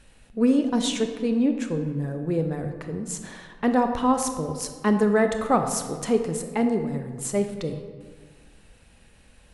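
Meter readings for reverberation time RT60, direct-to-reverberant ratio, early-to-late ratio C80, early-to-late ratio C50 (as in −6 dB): 1.7 s, 6.0 dB, 9.0 dB, 7.0 dB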